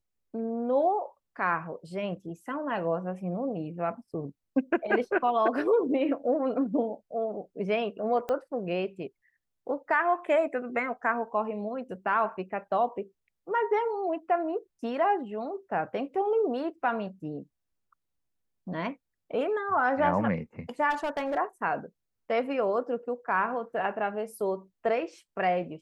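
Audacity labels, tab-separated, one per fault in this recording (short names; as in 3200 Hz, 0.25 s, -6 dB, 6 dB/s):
8.290000	8.290000	pop -19 dBFS
20.900000	21.380000	clipped -26 dBFS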